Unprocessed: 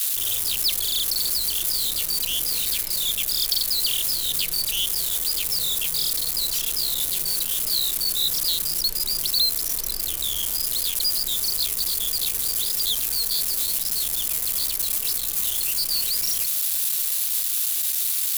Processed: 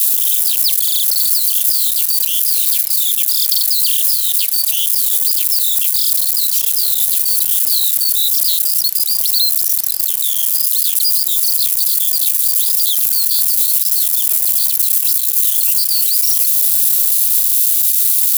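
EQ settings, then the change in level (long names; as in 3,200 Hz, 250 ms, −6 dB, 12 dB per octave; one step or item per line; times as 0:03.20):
spectral tilt +4 dB per octave
low-shelf EQ 62 Hz −9 dB
−4.0 dB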